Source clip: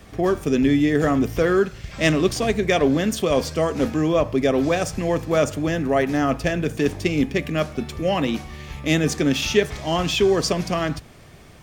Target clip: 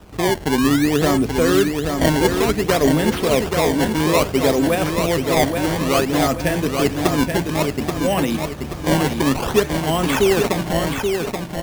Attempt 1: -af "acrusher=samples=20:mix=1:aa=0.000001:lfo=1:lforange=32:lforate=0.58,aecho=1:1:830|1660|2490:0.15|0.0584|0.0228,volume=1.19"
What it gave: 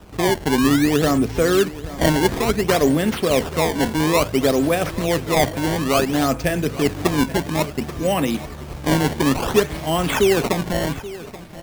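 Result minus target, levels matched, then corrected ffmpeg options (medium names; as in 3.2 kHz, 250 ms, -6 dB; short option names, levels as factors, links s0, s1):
echo-to-direct -11.5 dB
-af "acrusher=samples=20:mix=1:aa=0.000001:lfo=1:lforange=32:lforate=0.58,aecho=1:1:830|1660|2490|3320|4150:0.562|0.219|0.0855|0.0334|0.013,volume=1.19"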